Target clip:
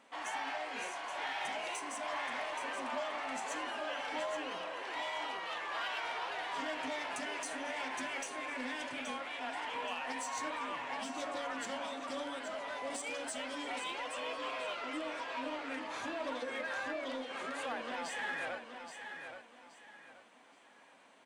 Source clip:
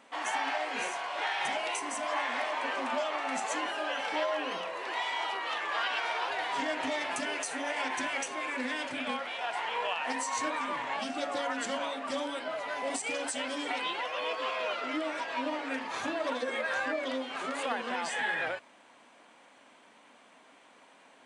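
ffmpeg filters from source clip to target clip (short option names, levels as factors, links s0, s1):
-filter_complex "[0:a]asplit=2[s0][s1];[s1]asoftclip=type=tanh:threshold=0.0168,volume=0.562[s2];[s0][s2]amix=inputs=2:normalize=0,aecho=1:1:825|1650|2475|3300:0.398|0.119|0.0358|0.0107,volume=0.355"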